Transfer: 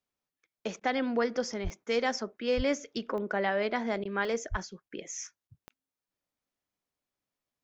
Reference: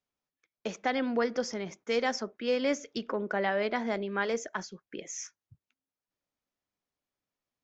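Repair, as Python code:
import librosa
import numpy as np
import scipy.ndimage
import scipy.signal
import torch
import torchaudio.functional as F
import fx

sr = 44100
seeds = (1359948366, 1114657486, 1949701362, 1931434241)

y = fx.fix_declick_ar(x, sr, threshold=10.0)
y = fx.fix_deplosive(y, sr, at_s=(1.63, 2.56, 4.5))
y = fx.fix_interpolate(y, sr, at_s=(0.8, 4.04, 4.89, 5.48), length_ms=11.0)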